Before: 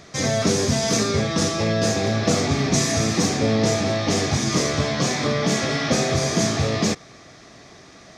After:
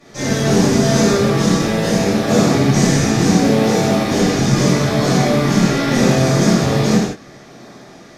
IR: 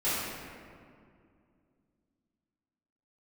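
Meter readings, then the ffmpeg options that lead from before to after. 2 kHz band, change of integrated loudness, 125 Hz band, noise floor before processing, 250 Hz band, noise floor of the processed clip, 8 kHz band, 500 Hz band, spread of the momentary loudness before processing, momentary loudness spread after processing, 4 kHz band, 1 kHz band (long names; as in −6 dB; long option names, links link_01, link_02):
+4.5 dB, +6.5 dB, +7.5 dB, −46 dBFS, +9.0 dB, −41 dBFS, +1.5 dB, +6.0 dB, 2 LU, 3 LU, +2.0 dB, +6.0 dB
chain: -filter_complex "[0:a]highpass=frequency=110:width=0.5412,highpass=frequency=110:width=1.3066,asplit=2[link_01][link_02];[link_02]acrusher=samples=27:mix=1:aa=0.000001:lfo=1:lforange=27:lforate=0.75,volume=-4dB[link_03];[link_01][link_03]amix=inputs=2:normalize=0[link_04];[1:a]atrim=start_sample=2205,atrim=end_sample=6174,asetrate=28224,aresample=44100[link_05];[link_04][link_05]afir=irnorm=-1:irlink=0,volume=-9dB"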